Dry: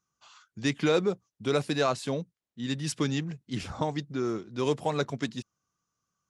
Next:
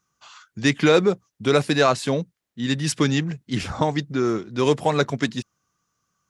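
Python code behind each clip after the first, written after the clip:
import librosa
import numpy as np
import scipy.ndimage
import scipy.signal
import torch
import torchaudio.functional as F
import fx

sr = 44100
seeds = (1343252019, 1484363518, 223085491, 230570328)

y = fx.peak_eq(x, sr, hz=1800.0, db=3.0, octaves=0.77)
y = y * librosa.db_to_amplitude(8.0)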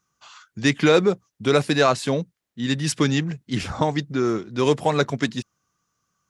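y = x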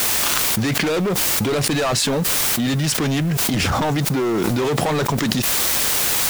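y = fx.leveller(x, sr, passes=5)
y = fx.quant_dither(y, sr, seeds[0], bits=6, dither='triangular')
y = fx.env_flatten(y, sr, amount_pct=100)
y = y * librosa.db_to_amplitude(-13.5)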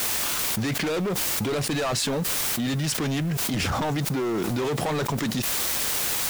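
y = np.clip(10.0 ** (14.0 / 20.0) * x, -1.0, 1.0) / 10.0 ** (14.0 / 20.0)
y = y * librosa.db_to_amplitude(-6.0)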